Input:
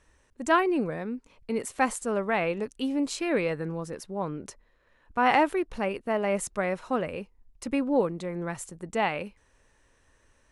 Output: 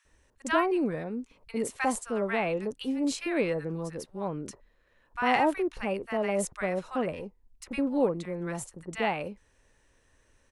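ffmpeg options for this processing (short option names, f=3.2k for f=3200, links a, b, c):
-filter_complex "[0:a]asettb=1/sr,asplit=3[a][b][c];[a]atrim=end=7.114[d];[b]atrim=start=7.11:end=7.74,asetpts=PTS-STARTPTS,afade=t=in:d=0.004:c=qsin,afade=t=out:st=0.626:d=0.004:c=qsin,aeval=exprs='(tanh(17.8*val(0)+0.45)-tanh(0.45))/17.8':c=same[e];[c]atrim=start=7.736[f];[d][e]acrossfade=d=0.004:c1=hsin:c2=qsin[g];[g][f]acrossfade=d=0.004:c1=qsin:c2=hsin,acrossover=split=1100[h][i];[h]adelay=50[j];[j][i]amix=inputs=2:normalize=0,volume=-1dB"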